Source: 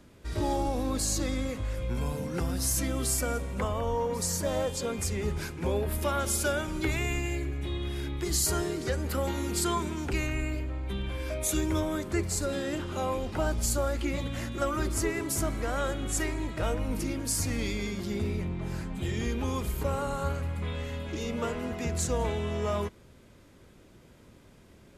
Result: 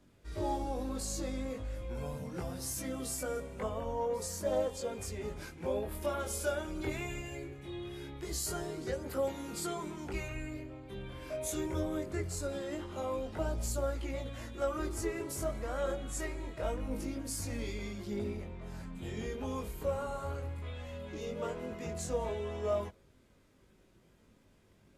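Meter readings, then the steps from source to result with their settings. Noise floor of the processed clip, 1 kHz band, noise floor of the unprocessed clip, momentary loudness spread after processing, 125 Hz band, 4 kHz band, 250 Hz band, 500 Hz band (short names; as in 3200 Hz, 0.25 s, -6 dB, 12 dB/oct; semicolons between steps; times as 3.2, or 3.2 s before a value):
-65 dBFS, -6.5 dB, -55 dBFS, 8 LU, -9.5 dB, -9.5 dB, -7.5 dB, -3.5 dB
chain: dynamic EQ 570 Hz, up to +7 dB, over -44 dBFS, Q 1.1; chorus voices 2, 0.22 Hz, delay 21 ms, depth 2.7 ms; gain -6.5 dB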